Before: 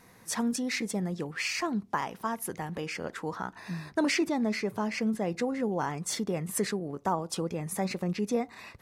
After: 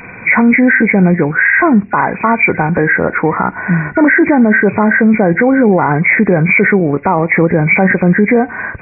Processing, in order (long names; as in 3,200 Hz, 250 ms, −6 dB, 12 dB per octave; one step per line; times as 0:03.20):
hearing-aid frequency compression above 1,400 Hz 4 to 1
boost into a limiter +24.5 dB
level −1 dB